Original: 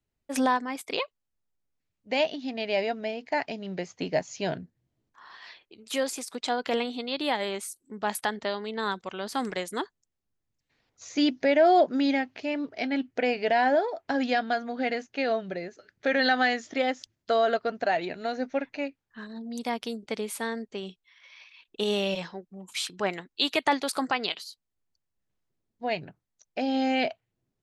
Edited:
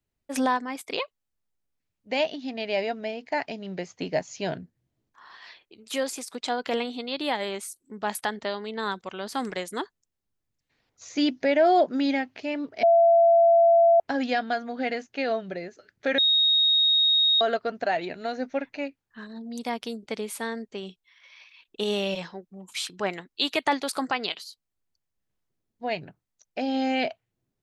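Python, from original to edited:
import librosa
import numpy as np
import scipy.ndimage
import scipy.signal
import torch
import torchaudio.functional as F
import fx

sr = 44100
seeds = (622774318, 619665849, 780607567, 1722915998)

y = fx.edit(x, sr, fx.bleep(start_s=12.83, length_s=1.17, hz=675.0, db=-14.0),
    fx.bleep(start_s=16.18, length_s=1.23, hz=3750.0, db=-17.5), tone=tone)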